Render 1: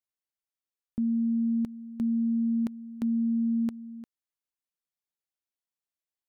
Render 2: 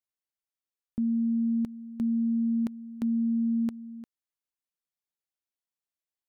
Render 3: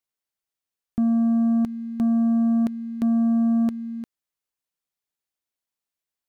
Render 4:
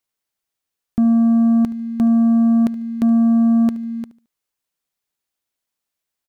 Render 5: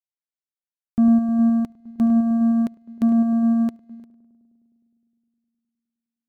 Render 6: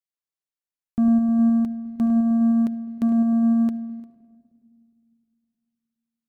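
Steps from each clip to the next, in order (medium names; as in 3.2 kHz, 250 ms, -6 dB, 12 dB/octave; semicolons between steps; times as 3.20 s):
no audible change
waveshaping leveller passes 1; trim +6 dB
feedback delay 73 ms, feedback 29%, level -18 dB; trim +6 dB
filtered feedback delay 103 ms, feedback 82%, low-pass 1.4 kHz, level -9 dB; upward expansion 2.5:1, over -28 dBFS
simulated room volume 3000 m³, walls mixed, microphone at 0.41 m; trim -2 dB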